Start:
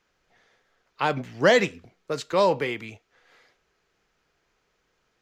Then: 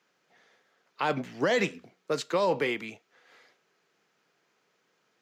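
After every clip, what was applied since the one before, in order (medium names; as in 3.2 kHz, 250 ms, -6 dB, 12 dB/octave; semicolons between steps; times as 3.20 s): high-pass 150 Hz 24 dB/octave; peak limiter -17 dBFS, peak gain reduction 11 dB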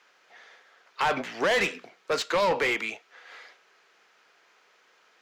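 bass shelf 290 Hz -9.5 dB; overdrive pedal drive 19 dB, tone 3.6 kHz, clips at -16.5 dBFS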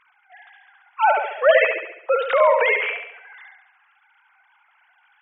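formants replaced by sine waves; on a send: flutter echo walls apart 11.9 m, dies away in 0.74 s; on the sum: trim +7 dB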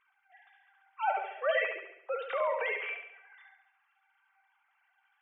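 feedback comb 390 Hz, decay 0.24 s, harmonics all, mix 80%; trim -2.5 dB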